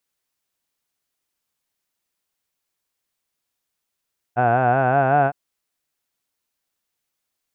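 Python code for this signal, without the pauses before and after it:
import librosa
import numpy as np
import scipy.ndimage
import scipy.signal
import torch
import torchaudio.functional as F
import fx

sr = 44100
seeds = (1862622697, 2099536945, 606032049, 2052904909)

y = fx.formant_vowel(sr, seeds[0], length_s=0.96, hz=118.0, glide_st=3.5, vibrato_hz=5.3, vibrato_st=0.9, f1_hz=720.0, f2_hz=1500.0, f3_hz=2600.0)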